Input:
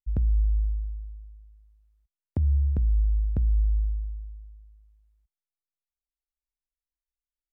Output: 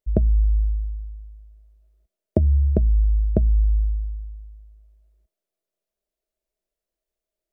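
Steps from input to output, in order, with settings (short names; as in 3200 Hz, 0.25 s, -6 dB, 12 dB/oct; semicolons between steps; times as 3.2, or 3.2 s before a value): band shelf 500 Hz +12 dB 1 oct; small resonant body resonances 210/330/630 Hz, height 11 dB, ringing for 60 ms; gain +4.5 dB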